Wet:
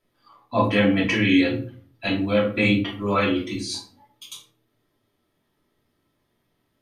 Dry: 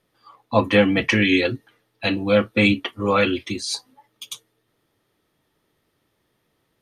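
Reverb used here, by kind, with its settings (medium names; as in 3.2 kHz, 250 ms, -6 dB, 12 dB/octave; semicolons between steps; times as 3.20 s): simulated room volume 320 m³, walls furnished, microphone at 2.9 m; trim -8 dB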